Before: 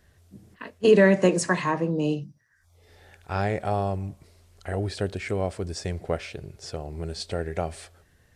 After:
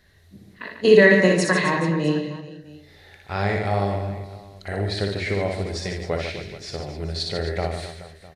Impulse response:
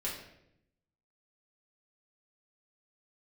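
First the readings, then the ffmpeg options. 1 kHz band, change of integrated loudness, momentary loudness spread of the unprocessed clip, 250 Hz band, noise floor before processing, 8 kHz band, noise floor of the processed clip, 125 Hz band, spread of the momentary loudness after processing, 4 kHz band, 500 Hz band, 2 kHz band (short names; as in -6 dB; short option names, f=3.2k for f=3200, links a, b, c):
+2.5 dB, +4.0 dB, 20 LU, +2.5 dB, -62 dBFS, +1.0 dB, -51 dBFS, +3.5 dB, 21 LU, +8.0 dB, +3.5 dB, +8.5 dB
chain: -filter_complex "[0:a]equalizer=f=2k:t=o:w=0.33:g=8,equalizer=f=4k:t=o:w=0.33:g=11,equalizer=f=8k:t=o:w=0.33:g=-5,aecho=1:1:60|144|261.6|426.2|656.7:0.631|0.398|0.251|0.158|0.1,asplit=2[a][b];[1:a]atrim=start_sample=2205[c];[b][c]afir=irnorm=-1:irlink=0,volume=-12dB[d];[a][d]amix=inputs=2:normalize=0,volume=-1dB"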